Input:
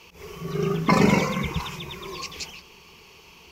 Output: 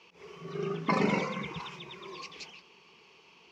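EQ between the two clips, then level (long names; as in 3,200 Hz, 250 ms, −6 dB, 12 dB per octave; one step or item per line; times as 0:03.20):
high-pass filter 190 Hz 12 dB per octave
low-pass filter 4,500 Hz 12 dB per octave
−7.5 dB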